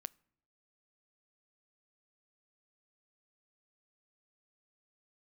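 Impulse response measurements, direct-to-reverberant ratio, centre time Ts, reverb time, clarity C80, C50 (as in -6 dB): 18.0 dB, 1 ms, no single decay rate, 30.0 dB, 27.0 dB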